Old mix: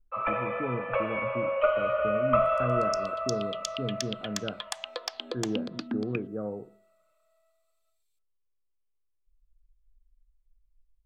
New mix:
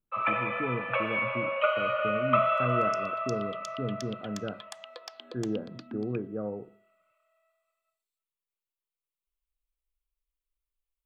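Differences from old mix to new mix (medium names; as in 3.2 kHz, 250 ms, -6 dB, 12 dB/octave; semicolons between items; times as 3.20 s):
first sound: add tilt EQ +4.5 dB/octave; second sound -9.5 dB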